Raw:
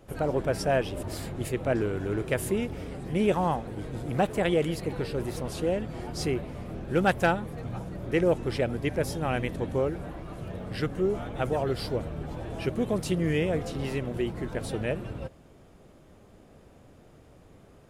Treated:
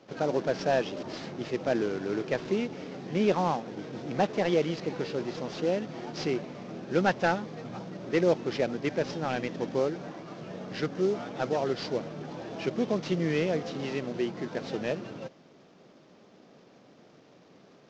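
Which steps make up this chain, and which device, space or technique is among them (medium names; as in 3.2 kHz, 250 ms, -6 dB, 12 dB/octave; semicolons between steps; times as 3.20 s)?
early wireless headset (high-pass 160 Hz 24 dB/octave; CVSD coder 32 kbps)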